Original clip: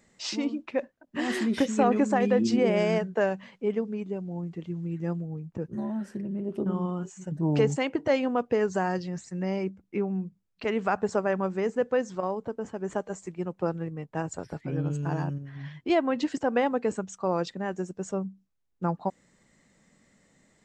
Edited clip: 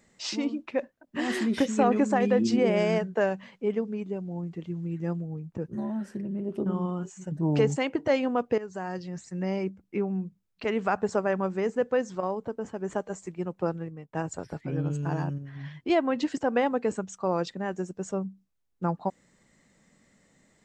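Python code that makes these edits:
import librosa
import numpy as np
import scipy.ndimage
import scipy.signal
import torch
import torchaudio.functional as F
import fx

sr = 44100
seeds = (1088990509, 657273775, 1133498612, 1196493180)

y = fx.edit(x, sr, fx.fade_in_from(start_s=8.58, length_s=0.81, floor_db=-15.0),
    fx.fade_out_to(start_s=13.68, length_s=0.45, floor_db=-11.0), tone=tone)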